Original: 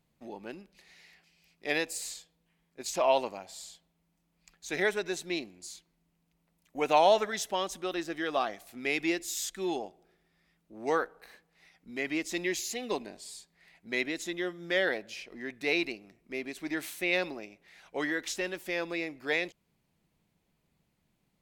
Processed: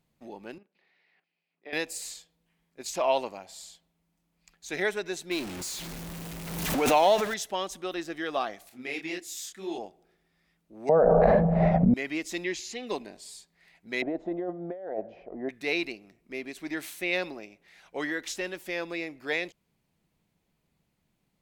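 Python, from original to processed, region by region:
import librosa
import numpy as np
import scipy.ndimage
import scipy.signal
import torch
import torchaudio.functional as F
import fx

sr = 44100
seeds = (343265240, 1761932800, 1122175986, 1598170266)

y = fx.chain(x, sr, fx.level_steps(step_db=13),
    fx.bandpass_edges(low_hz=260.0, high_hz=7300.0),
    fx.air_absorb(metres=320.0), at=(0.58, 1.73))
y = fx.chain(y, sr, fx.zero_step(step_db=-33.0),
    fx.pre_swell(db_per_s=38.0), at=(5.31, 7.34))
y = fx.chain(y, sr, fx.highpass(hz=64.0, slope=12),
    fx.detune_double(cents=60), at=(8.69, 9.78))
y = fx.chain(y, sr, fx.lowpass_res(hz=630.0, q=6.9),
    fx.low_shelf_res(hz=240.0, db=7.5, q=3.0),
    fx.env_flatten(amount_pct=100), at=(10.89, 11.94))
y = fx.chain(y, sr, fx.lowpass(hz=5900.0, slope=12),
    fx.notch(hz=650.0, q=5.4), at=(12.44, 12.87))
y = fx.chain(y, sr, fx.lowpass_res(hz=690.0, q=3.9),
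    fx.over_compress(threshold_db=-33.0, ratio=-1.0), at=(14.02, 15.49))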